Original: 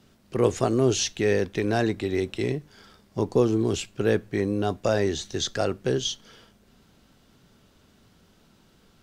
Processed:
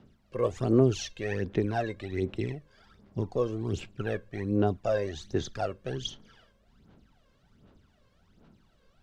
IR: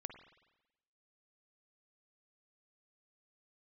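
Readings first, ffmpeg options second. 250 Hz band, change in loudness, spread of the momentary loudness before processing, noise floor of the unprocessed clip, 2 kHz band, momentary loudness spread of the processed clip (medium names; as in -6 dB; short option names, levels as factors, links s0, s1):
-4.5 dB, -5.0 dB, 7 LU, -60 dBFS, -7.0 dB, 11 LU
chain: -af "aphaser=in_gain=1:out_gain=1:delay=1.9:decay=0.69:speed=1.3:type=sinusoidal,lowpass=f=2600:p=1,volume=0.398"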